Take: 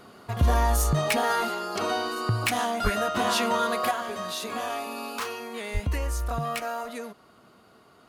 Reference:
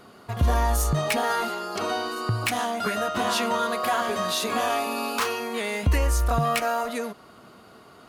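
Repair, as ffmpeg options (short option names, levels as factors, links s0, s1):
-filter_complex "[0:a]asplit=3[s0][s1][s2];[s0]afade=t=out:st=2.83:d=0.02[s3];[s1]highpass=f=140:w=0.5412,highpass=f=140:w=1.3066,afade=t=in:st=2.83:d=0.02,afade=t=out:st=2.95:d=0.02[s4];[s2]afade=t=in:st=2.95:d=0.02[s5];[s3][s4][s5]amix=inputs=3:normalize=0,asplit=3[s6][s7][s8];[s6]afade=t=out:st=5.73:d=0.02[s9];[s7]highpass=f=140:w=0.5412,highpass=f=140:w=1.3066,afade=t=in:st=5.73:d=0.02,afade=t=out:st=5.85:d=0.02[s10];[s8]afade=t=in:st=5.85:d=0.02[s11];[s9][s10][s11]amix=inputs=3:normalize=0,asetnsamples=n=441:p=0,asendcmd='3.91 volume volume 6.5dB',volume=1"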